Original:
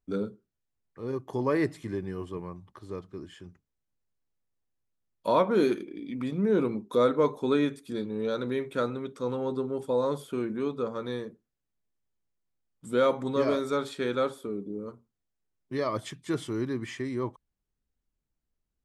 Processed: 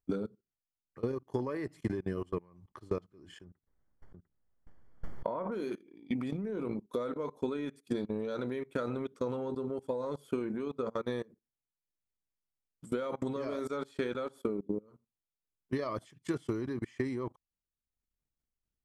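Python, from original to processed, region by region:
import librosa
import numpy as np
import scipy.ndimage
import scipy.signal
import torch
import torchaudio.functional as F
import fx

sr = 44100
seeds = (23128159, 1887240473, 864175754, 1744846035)

y = fx.chain(x, sr, fx.savgol(points=41),
    fx.echo_single(ms=699, db=-3.0),
    fx.pre_swell(db_per_s=49.0), at=(3.44, 5.52))
y = fx.notch(y, sr, hz=3700.0, q=12.0)
y = fx.level_steps(y, sr, step_db=18)
y = fx.transient(y, sr, attack_db=8, sustain_db=-6)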